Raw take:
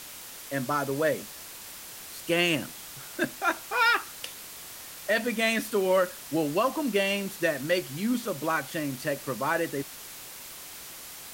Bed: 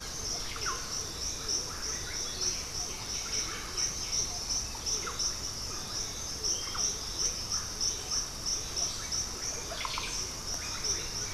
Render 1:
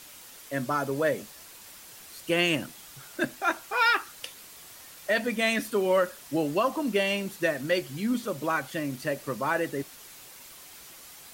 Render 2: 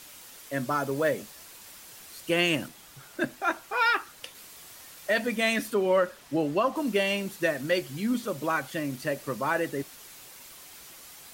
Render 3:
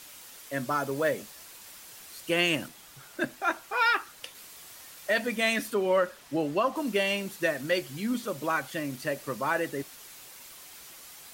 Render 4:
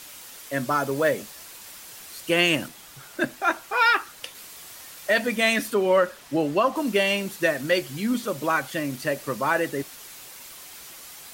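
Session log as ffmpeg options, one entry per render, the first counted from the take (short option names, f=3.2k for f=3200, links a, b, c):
-af "afftdn=nr=6:nf=-44"
-filter_complex "[0:a]asettb=1/sr,asplit=3[a][b][c];[a]atrim=end=0.674[d];[b]atrim=start=0.67:end=1.55,asetpts=PTS-STARTPTS,afade=t=in:d=0.004:c=qsin,afade=t=out:st=0.876:d=0.004:c=qsin,acrusher=bits=7:mode=log:mix=0:aa=0.000001[e];[c]atrim=start=1.546[f];[d][e]acrossfade=d=0.004:c1=hsin:c2=qsin[g];[g][f]acrossfade=d=0.004:c1=qsin:c2=hsin,asettb=1/sr,asplit=3[h][i][j];[h]atrim=end=2.684[k];[i]atrim=start=2.68:end=4.35,asetpts=PTS-STARTPTS,afade=t=in:d=0.004:c=qsin,afade=t=out:st=1.666:d=0.004:c=qsin,highshelf=f=2.6k:g=-4.5[l];[j]atrim=start=4.346[m];[k][l]acrossfade=d=0.004:c1=hsin:c2=qsin[n];[n][m]acrossfade=d=0.004:c1=qsin:c2=hsin,asettb=1/sr,asplit=3[o][p][q];[o]atrim=end=5.744[r];[p]atrim=start=5.74:end=6.76,asetpts=PTS-STARTPTS,afade=t=in:d=0.004:c=qsin,afade=t=out:st=1.016:d=0.004:c=qsin,aemphasis=mode=reproduction:type=cd[s];[q]atrim=start=6.756[t];[r][s]acrossfade=d=0.004:c1=hsin:c2=qsin[u];[u][t]acrossfade=d=0.004:c1=qsin:c2=hsin"
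-af "lowshelf=f=490:g=-3"
-af "volume=5dB"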